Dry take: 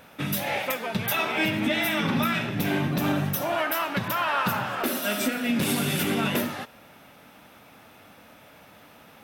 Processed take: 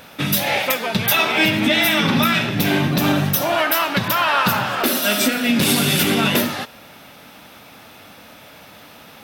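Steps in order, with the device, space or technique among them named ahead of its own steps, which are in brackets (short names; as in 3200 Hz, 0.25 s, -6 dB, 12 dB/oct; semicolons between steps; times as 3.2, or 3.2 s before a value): presence and air boost (bell 4400 Hz +6 dB 1.2 oct; high shelf 11000 Hz +4 dB); gain +7 dB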